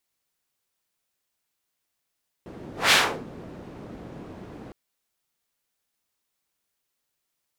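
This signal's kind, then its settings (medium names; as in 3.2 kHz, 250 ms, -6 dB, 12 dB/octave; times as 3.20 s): whoosh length 2.26 s, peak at 0.46 s, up 0.19 s, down 0.34 s, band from 270 Hz, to 2.6 kHz, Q 0.87, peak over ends 24.5 dB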